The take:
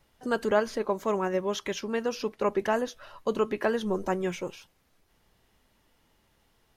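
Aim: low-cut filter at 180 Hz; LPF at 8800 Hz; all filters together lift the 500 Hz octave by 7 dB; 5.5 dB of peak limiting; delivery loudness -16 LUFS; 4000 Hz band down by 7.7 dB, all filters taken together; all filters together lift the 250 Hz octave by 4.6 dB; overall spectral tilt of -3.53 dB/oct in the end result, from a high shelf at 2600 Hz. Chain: HPF 180 Hz; LPF 8800 Hz; bell 250 Hz +5.5 dB; bell 500 Hz +7.5 dB; high shelf 2600 Hz -5.5 dB; bell 4000 Hz -6 dB; gain +9.5 dB; limiter -4 dBFS

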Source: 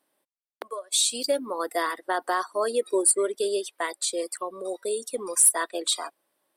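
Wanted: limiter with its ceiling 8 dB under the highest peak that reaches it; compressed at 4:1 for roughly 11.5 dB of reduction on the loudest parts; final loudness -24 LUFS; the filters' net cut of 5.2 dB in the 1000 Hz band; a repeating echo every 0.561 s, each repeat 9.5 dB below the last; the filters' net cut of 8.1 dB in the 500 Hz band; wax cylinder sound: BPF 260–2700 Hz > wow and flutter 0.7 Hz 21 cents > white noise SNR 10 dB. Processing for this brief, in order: bell 500 Hz -9 dB; bell 1000 Hz -3.5 dB; compressor 4:1, threshold -29 dBFS; limiter -24.5 dBFS; BPF 260–2700 Hz; feedback echo 0.561 s, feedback 33%, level -9.5 dB; wow and flutter 0.7 Hz 21 cents; white noise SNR 10 dB; gain +15 dB

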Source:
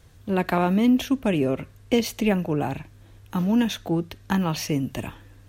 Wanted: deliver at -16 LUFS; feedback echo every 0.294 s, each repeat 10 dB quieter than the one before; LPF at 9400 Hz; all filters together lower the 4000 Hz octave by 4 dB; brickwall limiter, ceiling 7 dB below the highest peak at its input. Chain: LPF 9400 Hz; bell 4000 Hz -5.5 dB; limiter -15.5 dBFS; feedback echo 0.294 s, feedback 32%, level -10 dB; gain +10 dB

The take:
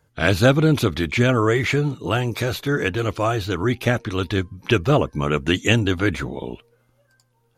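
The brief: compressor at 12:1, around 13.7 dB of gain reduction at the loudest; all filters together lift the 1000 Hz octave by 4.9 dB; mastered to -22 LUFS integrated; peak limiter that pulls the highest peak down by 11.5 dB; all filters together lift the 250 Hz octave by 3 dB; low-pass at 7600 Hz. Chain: LPF 7600 Hz; bell 250 Hz +3.5 dB; bell 1000 Hz +6.5 dB; compressor 12:1, threshold -22 dBFS; gain +9.5 dB; limiter -12 dBFS

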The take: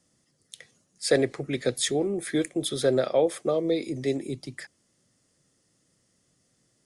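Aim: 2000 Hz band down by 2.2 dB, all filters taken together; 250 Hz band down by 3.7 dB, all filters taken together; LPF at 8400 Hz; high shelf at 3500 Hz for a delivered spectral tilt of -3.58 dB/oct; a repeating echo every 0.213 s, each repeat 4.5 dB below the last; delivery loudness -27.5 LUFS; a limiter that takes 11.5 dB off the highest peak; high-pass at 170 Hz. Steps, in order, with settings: HPF 170 Hz; LPF 8400 Hz; bell 250 Hz -4.5 dB; bell 2000 Hz -3.5 dB; high shelf 3500 Hz +4 dB; limiter -22.5 dBFS; feedback echo 0.213 s, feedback 60%, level -4.5 dB; gain +3.5 dB

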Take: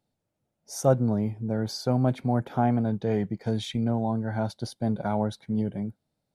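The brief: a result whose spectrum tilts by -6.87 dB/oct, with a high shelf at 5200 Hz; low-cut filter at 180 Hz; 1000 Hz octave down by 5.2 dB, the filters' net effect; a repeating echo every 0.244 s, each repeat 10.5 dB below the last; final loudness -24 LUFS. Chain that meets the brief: HPF 180 Hz; bell 1000 Hz -8 dB; high shelf 5200 Hz -6 dB; feedback echo 0.244 s, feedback 30%, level -10.5 dB; gain +6 dB

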